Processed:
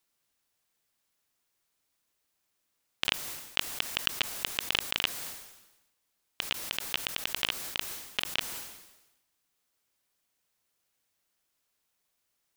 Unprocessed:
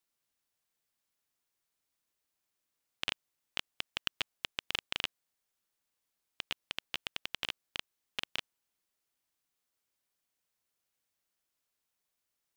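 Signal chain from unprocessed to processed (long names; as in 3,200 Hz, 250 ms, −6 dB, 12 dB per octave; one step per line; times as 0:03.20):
level that may fall only so fast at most 58 dB per second
level +6 dB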